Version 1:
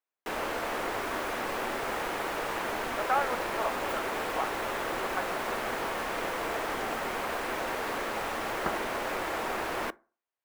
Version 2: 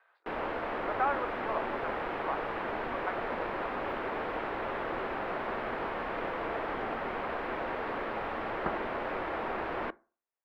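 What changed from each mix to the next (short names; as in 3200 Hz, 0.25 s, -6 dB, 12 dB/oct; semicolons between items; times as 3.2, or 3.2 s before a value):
speech: entry -2.10 s; master: add air absorption 420 m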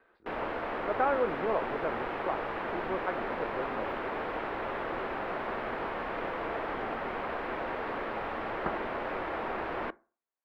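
speech: remove HPF 660 Hz 24 dB/oct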